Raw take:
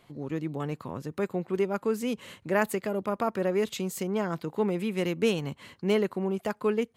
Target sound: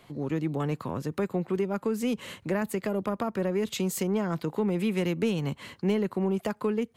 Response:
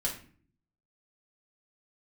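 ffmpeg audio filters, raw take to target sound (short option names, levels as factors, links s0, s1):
-filter_complex "[0:a]acrossover=split=230[s0][s1];[s1]acompressor=threshold=0.0282:ratio=10[s2];[s0][s2]amix=inputs=2:normalize=0,asplit=2[s3][s4];[s4]asoftclip=type=tanh:threshold=0.0631,volume=0.708[s5];[s3][s5]amix=inputs=2:normalize=0"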